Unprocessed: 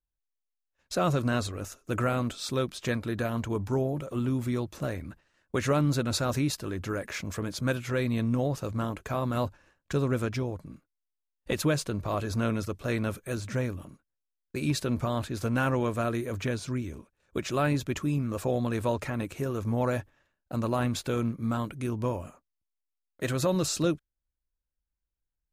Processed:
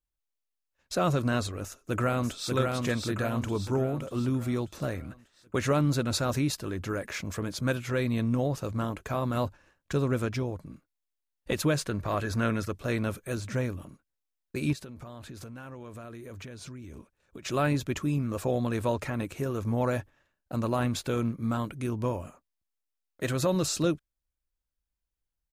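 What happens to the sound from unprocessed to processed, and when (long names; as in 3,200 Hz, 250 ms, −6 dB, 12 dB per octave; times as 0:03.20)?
0:01.63–0:02.52: delay throw 590 ms, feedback 50%, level −3 dB
0:11.77–0:12.72: parametric band 1,700 Hz +7 dB 0.66 octaves
0:14.73–0:17.45: downward compressor 16 to 1, threshold −39 dBFS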